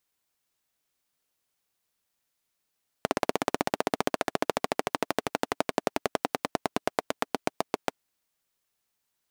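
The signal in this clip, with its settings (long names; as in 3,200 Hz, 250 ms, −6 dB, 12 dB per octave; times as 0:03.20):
pulse-train model of a single-cylinder engine, changing speed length 4.96 s, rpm 2,000, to 800, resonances 290/420/620 Hz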